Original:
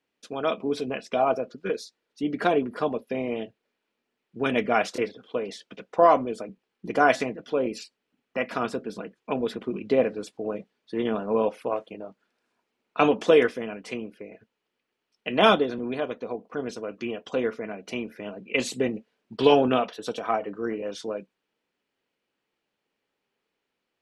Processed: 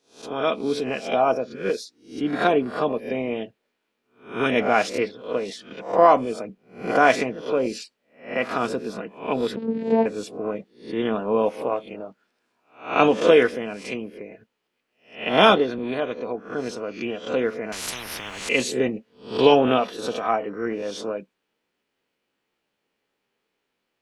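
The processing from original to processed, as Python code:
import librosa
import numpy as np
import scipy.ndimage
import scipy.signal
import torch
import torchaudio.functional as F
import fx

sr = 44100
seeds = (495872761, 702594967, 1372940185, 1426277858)

y = fx.spec_swells(x, sr, rise_s=0.4)
y = fx.vocoder(y, sr, bands=8, carrier='saw', carrier_hz=225.0, at=(9.56, 10.06))
y = fx.spectral_comp(y, sr, ratio=10.0, at=(17.72, 18.49))
y = y * 10.0 ** (2.0 / 20.0)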